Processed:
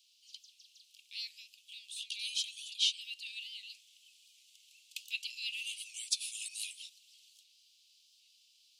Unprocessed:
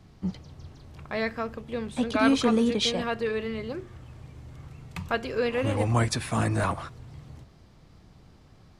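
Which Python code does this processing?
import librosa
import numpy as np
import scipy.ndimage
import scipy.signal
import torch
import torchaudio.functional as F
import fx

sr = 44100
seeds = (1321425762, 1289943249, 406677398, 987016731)

y = scipy.signal.sosfilt(scipy.signal.butter(12, 2700.0, 'highpass', fs=sr, output='sos'), x)
y = fx.rider(y, sr, range_db=4, speed_s=0.5)
y = fx.record_warp(y, sr, rpm=78.0, depth_cents=100.0)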